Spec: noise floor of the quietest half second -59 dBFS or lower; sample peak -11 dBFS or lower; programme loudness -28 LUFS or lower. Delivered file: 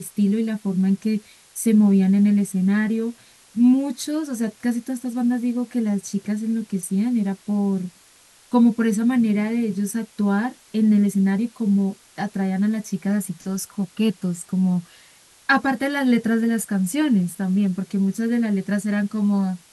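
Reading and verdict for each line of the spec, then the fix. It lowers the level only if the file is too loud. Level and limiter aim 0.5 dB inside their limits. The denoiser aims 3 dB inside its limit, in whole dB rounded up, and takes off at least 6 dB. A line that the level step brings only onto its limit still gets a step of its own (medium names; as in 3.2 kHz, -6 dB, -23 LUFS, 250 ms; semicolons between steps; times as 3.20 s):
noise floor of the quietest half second -53 dBFS: fail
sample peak -5.5 dBFS: fail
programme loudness -21.5 LUFS: fail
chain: trim -7 dB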